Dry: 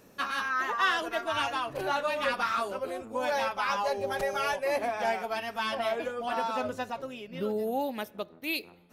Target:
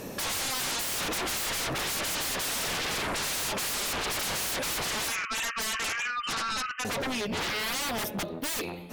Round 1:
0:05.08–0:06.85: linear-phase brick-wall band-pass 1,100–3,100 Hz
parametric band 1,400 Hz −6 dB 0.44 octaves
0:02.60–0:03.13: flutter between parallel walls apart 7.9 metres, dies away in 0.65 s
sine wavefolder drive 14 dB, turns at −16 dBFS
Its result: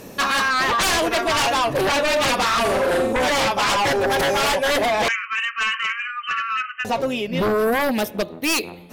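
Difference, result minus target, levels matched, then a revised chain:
sine wavefolder: distortion −25 dB
0:05.08–0:06.85: linear-phase brick-wall band-pass 1,100–3,100 Hz
parametric band 1,400 Hz −6 dB 0.44 octaves
0:02.60–0:03.13: flutter between parallel walls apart 7.9 metres, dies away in 0.65 s
sine wavefolder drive 14 dB, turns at −28 dBFS

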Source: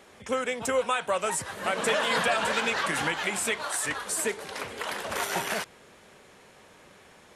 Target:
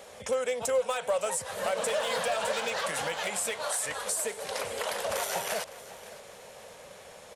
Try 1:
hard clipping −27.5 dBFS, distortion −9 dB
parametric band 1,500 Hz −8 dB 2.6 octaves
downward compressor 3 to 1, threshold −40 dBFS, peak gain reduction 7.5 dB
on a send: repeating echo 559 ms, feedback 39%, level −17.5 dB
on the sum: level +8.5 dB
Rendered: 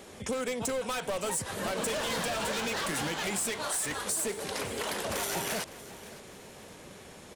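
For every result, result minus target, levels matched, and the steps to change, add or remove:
hard clipping: distortion +11 dB; 500 Hz band −3.0 dB
change: hard clipping −20.5 dBFS, distortion −19 dB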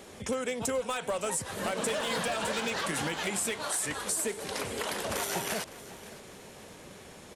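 500 Hz band −2.5 dB
add after downward compressor: low shelf with overshoot 420 Hz −7 dB, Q 3

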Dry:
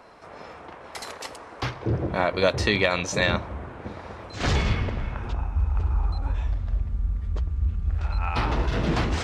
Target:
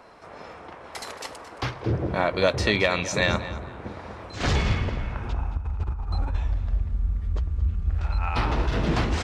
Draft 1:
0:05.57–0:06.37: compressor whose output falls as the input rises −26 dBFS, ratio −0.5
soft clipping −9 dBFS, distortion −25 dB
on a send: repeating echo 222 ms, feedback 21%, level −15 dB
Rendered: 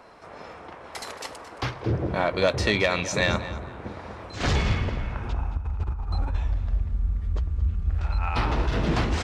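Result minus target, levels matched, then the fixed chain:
soft clipping: distortion +12 dB
0:05.57–0:06.37: compressor whose output falls as the input rises −26 dBFS, ratio −0.5
soft clipping −2 dBFS, distortion −37 dB
on a send: repeating echo 222 ms, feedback 21%, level −15 dB

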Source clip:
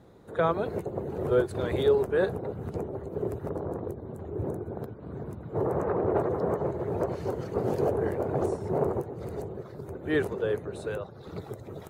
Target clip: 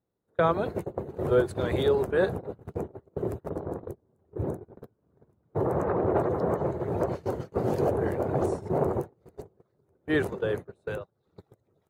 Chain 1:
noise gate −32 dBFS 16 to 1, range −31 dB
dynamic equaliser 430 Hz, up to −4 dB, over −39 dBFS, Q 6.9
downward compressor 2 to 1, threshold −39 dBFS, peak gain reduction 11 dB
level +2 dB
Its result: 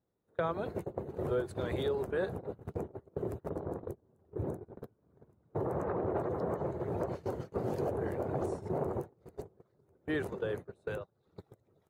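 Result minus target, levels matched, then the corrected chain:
downward compressor: peak gain reduction +11 dB
noise gate −32 dBFS 16 to 1, range −31 dB
dynamic equaliser 430 Hz, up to −4 dB, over −39 dBFS, Q 6.9
level +2 dB

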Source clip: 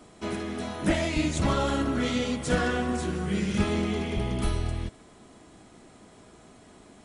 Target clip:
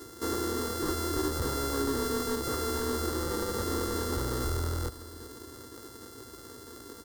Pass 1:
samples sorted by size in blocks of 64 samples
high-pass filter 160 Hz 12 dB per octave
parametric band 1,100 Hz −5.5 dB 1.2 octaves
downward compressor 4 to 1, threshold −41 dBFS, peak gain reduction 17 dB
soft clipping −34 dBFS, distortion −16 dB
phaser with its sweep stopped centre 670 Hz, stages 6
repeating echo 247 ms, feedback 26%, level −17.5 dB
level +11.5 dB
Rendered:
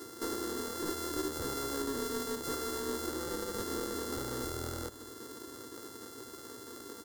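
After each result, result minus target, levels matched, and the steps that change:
downward compressor: peak gain reduction +7.5 dB; echo 133 ms early; 125 Hz band −5.5 dB
change: downward compressor 4 to 1, threshold −30.5 dBFS, peak gain reduction 9 dB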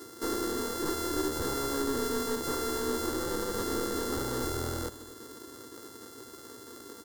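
echo 133 ms early; 125 Hz band −6.0 dB
change: repeating echo 380 ms, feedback 26%, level −17.5 dB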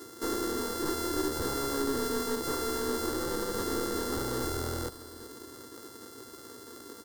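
125 Hz band −6.0 dB
change: high-pass filter 75 Hz 12 dB per octave

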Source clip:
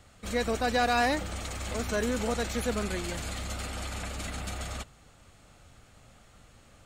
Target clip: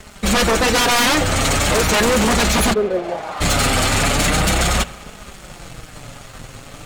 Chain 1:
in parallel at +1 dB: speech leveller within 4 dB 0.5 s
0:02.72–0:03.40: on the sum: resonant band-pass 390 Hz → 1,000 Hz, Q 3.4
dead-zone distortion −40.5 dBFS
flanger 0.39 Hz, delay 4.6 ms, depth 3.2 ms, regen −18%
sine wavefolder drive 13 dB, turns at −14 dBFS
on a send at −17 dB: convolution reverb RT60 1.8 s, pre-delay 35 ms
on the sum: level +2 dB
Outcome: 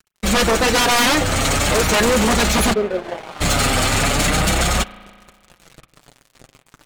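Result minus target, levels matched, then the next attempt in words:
dead-zone distortion: distortion +9 dB
in parallel at +1 dB: speech leveller within 4 dB 0.5 s
0:02.72–0:03.40: on the sum: resonant band-pass 390 Hz → 1,000 Hz, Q 3.4
dead-zone distortion −51 dBFS
flanger 0.39 Hz, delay 4.6 ms, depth 3.2 ms, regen −18%
sine wavefolder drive 13 dB, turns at −14 dBFS
on a send at −17 dB: convolution reverb RT60 1.8 s, pre-delay 35 ms
on the sum: level +2 dB

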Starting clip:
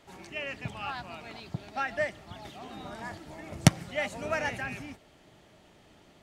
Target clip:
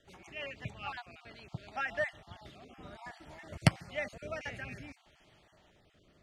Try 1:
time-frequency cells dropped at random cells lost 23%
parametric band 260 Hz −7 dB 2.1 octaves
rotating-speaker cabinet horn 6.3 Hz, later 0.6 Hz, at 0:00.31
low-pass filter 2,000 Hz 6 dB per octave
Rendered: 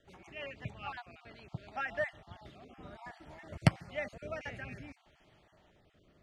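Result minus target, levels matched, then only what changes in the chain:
4,000 Hz band −3.0 dB
change: low-pass filter 4,700 Hz 6 dB per octave

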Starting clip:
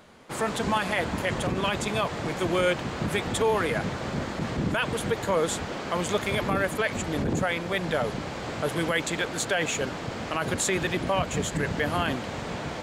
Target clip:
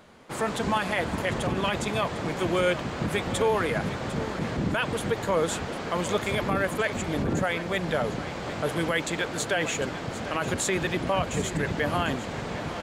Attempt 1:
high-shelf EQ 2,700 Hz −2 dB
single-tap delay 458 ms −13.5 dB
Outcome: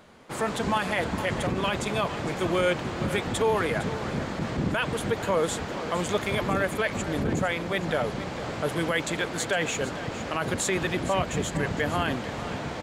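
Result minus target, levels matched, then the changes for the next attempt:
echo 293 ms early
change: single-tap delay 751 ms −13.5 dB

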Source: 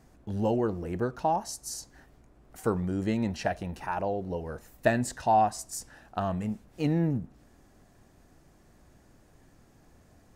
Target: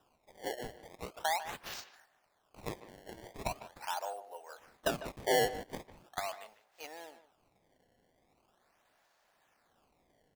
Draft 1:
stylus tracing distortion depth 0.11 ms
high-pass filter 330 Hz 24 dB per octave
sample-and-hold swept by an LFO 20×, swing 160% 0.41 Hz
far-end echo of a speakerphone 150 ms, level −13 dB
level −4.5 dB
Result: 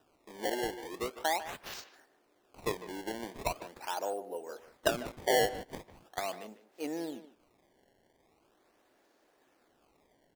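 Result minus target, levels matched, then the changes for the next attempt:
250 Hz band +4.0 dB
change: high-pass filter 670 Hz 24 dB per octave

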